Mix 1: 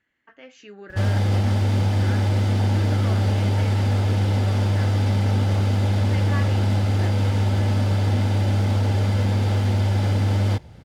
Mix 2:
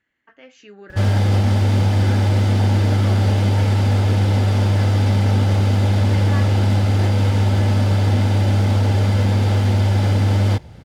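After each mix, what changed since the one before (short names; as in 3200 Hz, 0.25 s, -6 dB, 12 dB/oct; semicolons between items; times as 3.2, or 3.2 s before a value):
background +4.0 dB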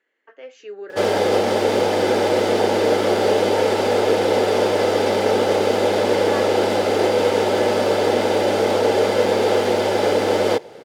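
background +4.0 dB; master: add resonant high-pass 440 Hz, resonance Q 3.7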